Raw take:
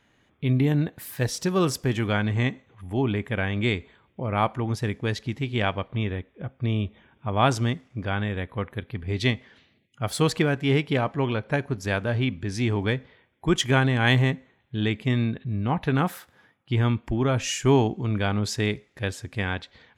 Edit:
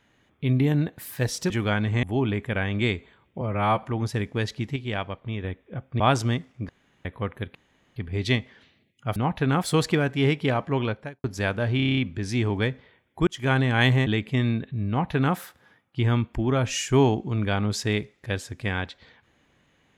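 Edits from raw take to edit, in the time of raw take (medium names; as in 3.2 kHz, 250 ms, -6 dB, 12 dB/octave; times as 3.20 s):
1.50–1.93 s: delete
2.46–2.85 s: delete
4.23–4.51 s: stretch 1.5×
5.44–6.12 s: gain -4.5 dB
6.68–7.36 s: delete
8.05–8.41 s: room tone
8.91 s: insert room tone 0.41 s
11.39–11.71 s: fade out quadratic
12.23 s: stutter 0.03 s, 8 plays
13.53–13.83 s: fade in
14.33–14.80 s: delete
15.62–16.10 s: copy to 10.11 s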